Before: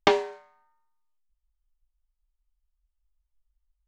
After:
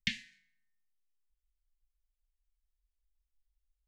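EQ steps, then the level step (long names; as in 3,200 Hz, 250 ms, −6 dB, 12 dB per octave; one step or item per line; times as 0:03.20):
Chebyshev band-stop filter 230–1,800 Hz, order 5
−5.5 dB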